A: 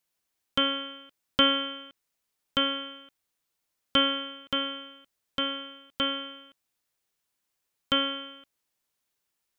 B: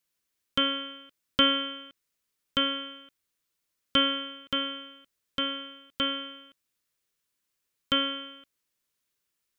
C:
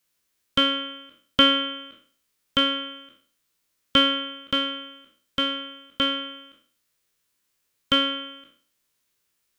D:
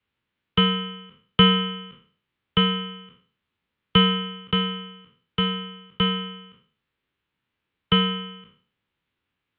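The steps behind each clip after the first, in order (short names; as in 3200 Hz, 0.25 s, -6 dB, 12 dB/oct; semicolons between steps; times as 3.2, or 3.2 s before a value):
bell 780 Hz -8.5 dB 0.51 oct
spectral trails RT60 0.47 s; gain +5 dB
mistuned SSB -87 Hz 160–3500 Hz; low shelf 200 Hz +11.5 dB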